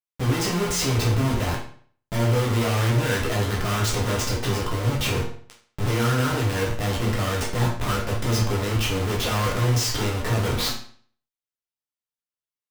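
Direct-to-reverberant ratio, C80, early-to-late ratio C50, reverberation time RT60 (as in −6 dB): −4.5 dB, 9.5 dB, 5.5 dB, 0.50 s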